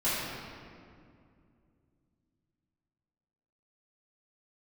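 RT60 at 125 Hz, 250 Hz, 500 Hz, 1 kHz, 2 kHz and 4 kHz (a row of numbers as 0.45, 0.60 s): 3.7, 3.4, 2.6, 2.1, 1.8, 1.4 s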